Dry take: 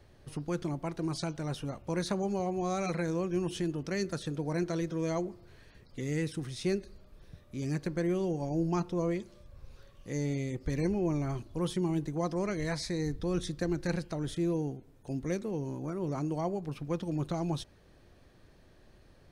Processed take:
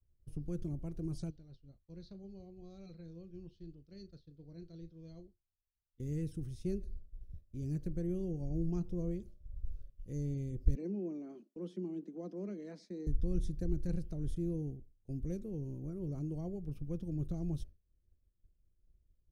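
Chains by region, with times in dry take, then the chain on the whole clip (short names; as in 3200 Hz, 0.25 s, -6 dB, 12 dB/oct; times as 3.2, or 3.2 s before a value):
1.3–6 ladder low-pass 4600 Hz, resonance 75% + doubler 36 ms -12.5 dB
10.75–13.07 steep high-pass 190 Hz 72 dB/oct + air absorption 130 m
whole clip: graphic EQ 125/250/1000/2000/4000/8000 Hz -6/-5/-5/-11/-11/-9 dB; expander -47 dBFS; passive tone stack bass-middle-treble 10-0-1; gain +17 dB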